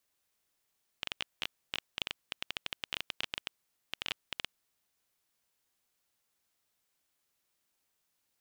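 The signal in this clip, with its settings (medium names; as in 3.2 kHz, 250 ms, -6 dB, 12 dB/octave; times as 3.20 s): random clicks 12 per s -16 dBFS 3.59 s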